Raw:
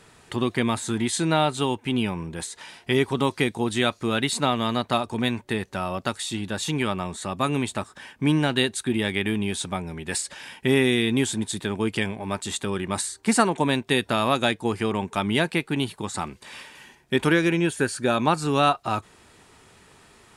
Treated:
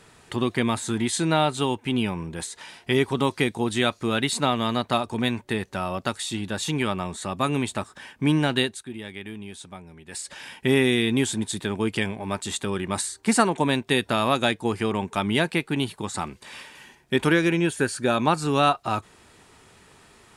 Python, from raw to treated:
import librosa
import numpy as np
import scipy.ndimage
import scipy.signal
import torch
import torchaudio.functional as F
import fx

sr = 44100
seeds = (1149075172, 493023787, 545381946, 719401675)

y = fx.edit(x, sr, fx.fade_down_up(start_s=8.58, length_s=1.78, db=-12.0, fade_s=0.25), tone=tone)